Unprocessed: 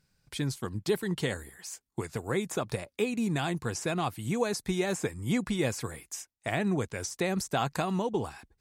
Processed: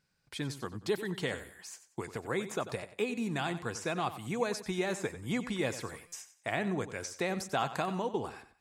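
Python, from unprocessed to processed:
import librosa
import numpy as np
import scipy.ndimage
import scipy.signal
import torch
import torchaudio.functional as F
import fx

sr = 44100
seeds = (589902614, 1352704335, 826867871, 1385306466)

y = fx.lowpass(x, sr, hz=1600.0, slope=6)
y = fx.tilt_eq(y, sr, slope=2.5)
y = fx.echo_feedback(y, sr, ms=93, feedback_pct=29, wet_db=-13)
y = fx.buffer_glitch(y, sr, at_s=(6.07,), block=256, repeats=8)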